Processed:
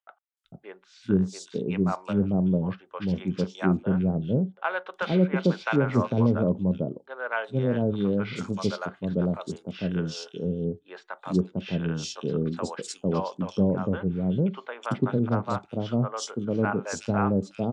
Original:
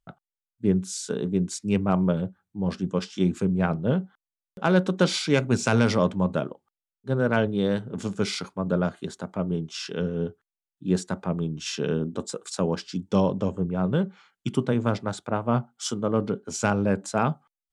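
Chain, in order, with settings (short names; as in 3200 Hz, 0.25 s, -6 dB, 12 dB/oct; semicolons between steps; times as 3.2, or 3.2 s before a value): three bands offset in time mids, highs, lows 0.37/0.45 s, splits 630/3100 Hz; treble ducked by the level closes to 1500 Hz, closed at -18.5 dBFS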